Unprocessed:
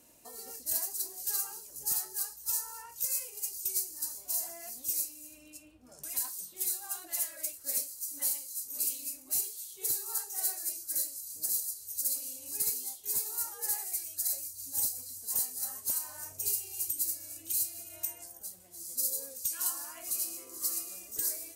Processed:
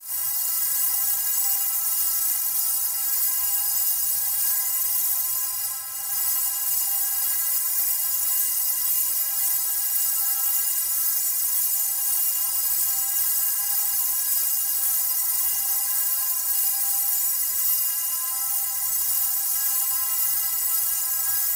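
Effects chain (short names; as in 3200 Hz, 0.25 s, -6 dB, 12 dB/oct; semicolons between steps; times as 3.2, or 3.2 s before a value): per-bin compression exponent 0.2; soft clip -21.5 dBFS, distortion -14 dB; Chebyshev band-stop 160–830 Hz, order 2; high shelf 12000 Hz +8 dB; metallic resonator 120 Hz, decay 0.33 s, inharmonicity 0.03; non-linear reverb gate 0.13 s rising, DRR -6 dB; expander -32 dBFS; low shelf 260 Hz -8 dB; darkening echo 0.1 s, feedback 68%, low-pass 4400 Hz, level -5 dB; gain +4.5 dB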